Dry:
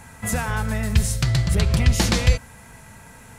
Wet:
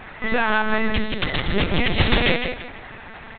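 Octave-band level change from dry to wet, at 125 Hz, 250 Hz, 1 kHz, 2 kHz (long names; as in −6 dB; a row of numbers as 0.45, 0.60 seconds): −7.5, +2.0, +6.5, +7.5 decibels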